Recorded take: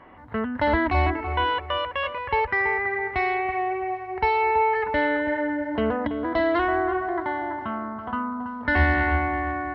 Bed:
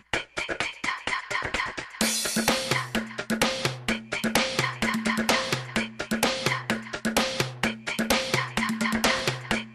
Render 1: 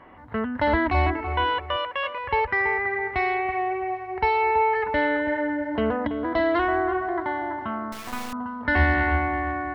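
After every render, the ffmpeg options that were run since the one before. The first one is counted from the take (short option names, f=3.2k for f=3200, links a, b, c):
-filter_complex "[0:a]asettb=1/sr,asplit=3[a][b][c];[a]atrim=end=1.764[d];[b]atrim=start=1.76:end=2.24,asetpts=PTS-STARTPTS,afade=t=in:d=0.004:c=qsin,afade=t=out:st=0.476:d=0.004:c=qsin,highpass=f=350:p=1[e];[c]atrim=start=2.236[f];[d][e]acrossfade=d=0.004:c1=hsin:c2=qsin[g];[g][f]acrossfade=d=0.004:c1=qsin:c2=hsin,asettb=1/sr,asplit=3[h][i][j];[h]atrim=end=7.924[k];[i]atrim=start=7.92:end=8.33,asetpts=PTS-STARTPTS,afade=t=in:d=0.004:c=qsin,afade=t=out:st=0.406:d=0.004:c=qsin,acrusher=bits=3:dc=4:mix=0:aa=0.000001[l];[j]atrim=start=8.326[m];[k][l]acrossfade=d=0.004:c1=hsin:c2=qsin[n];[n][m]acrossfade=d=0.004:c1=qsin:c2=hsin"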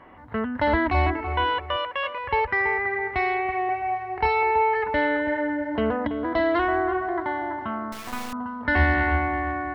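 -filter_complex "[0:a]asettb=1/sr,asplit=3[a][b][c];[a]atrim=end=3.664[d];[b]atrim=start=3.66:end=4.43,asetpts=PTS-STARTPTS,afade=t=in:d=0.004:c=qsin,afade=t=out:st=0.766:d=0.004:c=qsin,asplit=2[e][f];[f]adelay=28,volume=-3.5dB[g];[e][g]amix=inputs=2:normalize=0,atrim=end_sample=33957[h];[c]atrim=start=4.426[i];[d][h]acrossfade=d=0.004:c1=hsin:c2=qsin[j];[j][i]acrossfade=d=0.004:c1=qsin:c2=hsin"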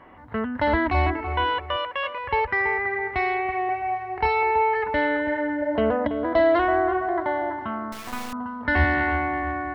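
-filter_complex "[0:a]asettb=1/sr,asplit=3[a][b][c];[a]atrim=end=5.624[d];[b]atrim=start=5.62:end=7.5,asetpts=PTS-STARTPTS,afade=t=in:d=0.004:c=qsin,afade=t=out:st=1.876:d=0.004:c=qsin,equalizer=f=590:t=o:w=0.42:g=9[e];[c]atrim=start=7.496[f];[d][e]acrossfade=d=0.004:c1=hsin:c2=qsin[g];[g][f]acrossfade=d=0.004:c1=qsin:c2=hsin,asettb=1/sr,asplit=3[h][i][j];[h]atrim=end=8.844[k];[i]atrim=start=8.84:end=9.43,asetpts=PTS-STARTPTS,afade=t=in:d=0.004:c=qsin,afade=t=out:st=0.586:d=0.004:c=qsin,highpass=94[l];[j]atrim=start=9.426[m];[k][l]acrossfade=d=0.004:c1=hsin:c2=qsin[n];[n][m]acrossfade=d=0.004:c1=qsin:c2=hsin"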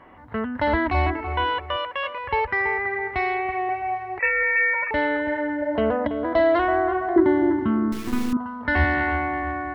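-filter_complex "[0:a]asettb=1/sr,asplit=3[a][b][c];[a]atrim=end=4.194[d];[b]atrim=start=4.19:end=4.91,asetpts=PTS-STARTPTS,afade=t=in:d=0.004:c=qsin,afade=t=out:st=0.716:d=0.004:c=qsin,lowpass=f=2.3k:t=q:w=0.5098,lowpass=f=2.3k:t=q:w=0.6013,lowpass=f=2.3k:t=q:w=0.9,lowpass=f=2.3k:t=q:w=2.563,afreqshift=-2700[e];[c]atrim=start=4.906[f];[d][e]acrossfade=d=0.004:c1=hsin:c2=qsin[g];[g][f]acrossfade=d=0.004:c1=qsin:c2=hsin,asettb=1/sr,asplit=3[h][i][j];[h]atrim=end=7.164[k];[i]atrim=start=7.16:end=8.37,asetpts=PTS-STARTPTS,afade=t=in:d=0.004:c=qsin,afade=t=out:st=1.206:d=0.004:c=qsin,lowshelf=f=470:t=q:w=3:g=9.5[l];[j]atrim=start=8.366[m];[k][l]acrossfade=d=0.004:c1=hsin:c2=qsin[n];[n][m]acrossfade=d=0.004:c1=qsin:c2=hsin"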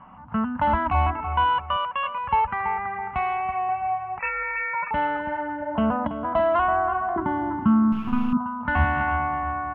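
-af "firequalizer=gain_entry='entry(110,0);entry(180,11);entry(350,-16);entry(820,4);entry(1300,5);entry(1900,-12);entry(2700,1);entry(4000,-18);entry(7700,-26)':delay=0.05:min_phase=1"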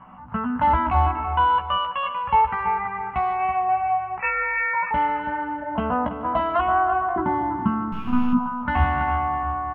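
-filter_complex "[0:a]asplit=2[a][b];[b]adelay=16,volume=-4dB[c];[a][c]amix=inputs=2:normalize=0,aecho=1:1:148|296|444|592|740:0.158|0.0808|0.0412|0.021|0.0107"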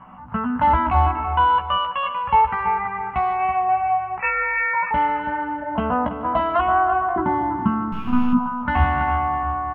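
-af "volume=2dB"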